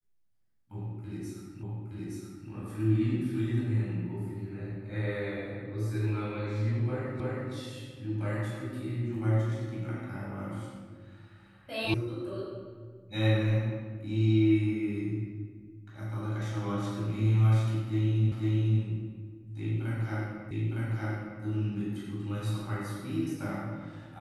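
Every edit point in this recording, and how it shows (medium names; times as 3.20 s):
1.63 s: repeat of the last 0.87 s
7.20 s: repeat of the last 0.32 s
11.94 s: sound stops dead
18.32 s: repeat of the last 0.5 s
20.51 s: repeat of the last 0.91 s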